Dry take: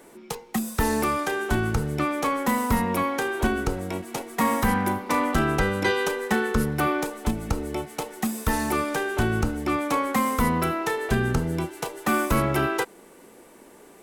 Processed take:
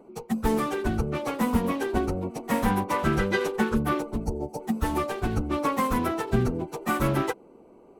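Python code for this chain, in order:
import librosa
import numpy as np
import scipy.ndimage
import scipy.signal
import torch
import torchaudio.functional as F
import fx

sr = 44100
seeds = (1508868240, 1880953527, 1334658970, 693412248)

y = fx.wiener(x, sr, points=25)
y = fx.spec_box(y, sr, start_s=7.44, length_s=0.63, low_hz=1000.0, high_hz=4300.0, gain_db=-13)
y = fx.stretch_vocoder_free(y, sr, factor=0.57)
y = y * librosa.db_to_amplitude(3.0)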